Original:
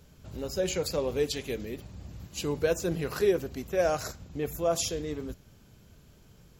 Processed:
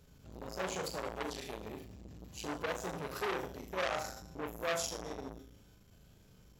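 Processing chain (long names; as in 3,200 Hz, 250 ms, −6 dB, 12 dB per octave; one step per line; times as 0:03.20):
tuned comb filter 60 Hz, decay 0.89 s, harmonics odd, mix 70%
on a send: flutter between parallel walls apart 6.4 metres, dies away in 0.48 s
on the sum: saturating transformer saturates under 2,600 Hz
level +3.5 dB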